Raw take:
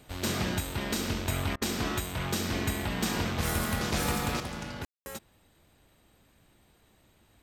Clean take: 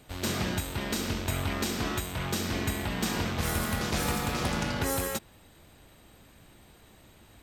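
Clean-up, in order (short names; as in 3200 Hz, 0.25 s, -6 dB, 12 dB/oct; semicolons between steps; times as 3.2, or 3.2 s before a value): room tone fill 4.85–5.06; interpolate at 1.56, 54 ms; gain correction +8 dB, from 4.4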